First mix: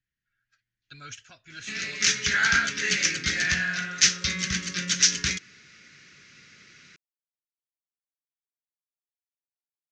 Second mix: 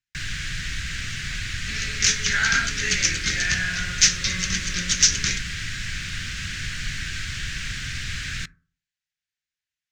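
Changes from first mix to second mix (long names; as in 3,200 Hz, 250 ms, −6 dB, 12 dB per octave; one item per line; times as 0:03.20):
speech −8.0 dB
first sound: unmuted
reverb: on, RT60 0.45 s
master: remove high-frequency loss of the air 52 metres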